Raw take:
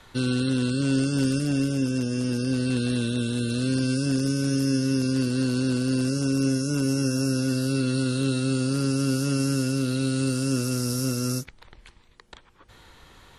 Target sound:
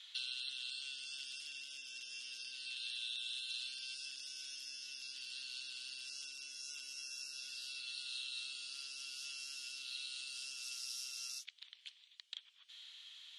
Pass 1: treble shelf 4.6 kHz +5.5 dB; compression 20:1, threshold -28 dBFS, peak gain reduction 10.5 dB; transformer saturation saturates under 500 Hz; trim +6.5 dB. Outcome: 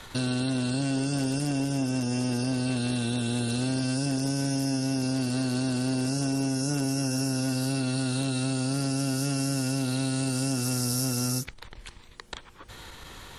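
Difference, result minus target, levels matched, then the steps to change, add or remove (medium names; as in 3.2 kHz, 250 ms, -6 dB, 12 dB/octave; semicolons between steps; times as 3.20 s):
4 kHz band -10.0 dB
add after compression: ladder band-pass 3.6 kHz, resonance 60%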